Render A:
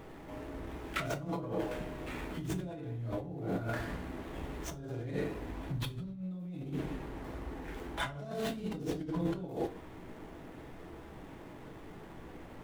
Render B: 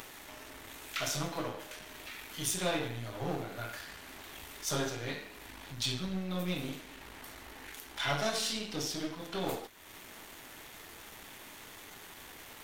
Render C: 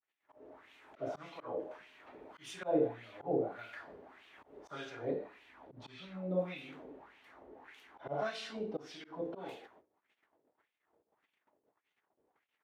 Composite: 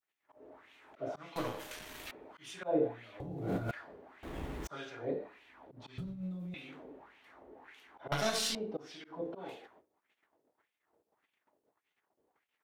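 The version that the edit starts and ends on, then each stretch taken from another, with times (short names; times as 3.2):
C
1.36–2.11 from B
3.2–3.71 from A
4.23–4.67 from A
5.98–6.54 from A
8.12–8.55 from B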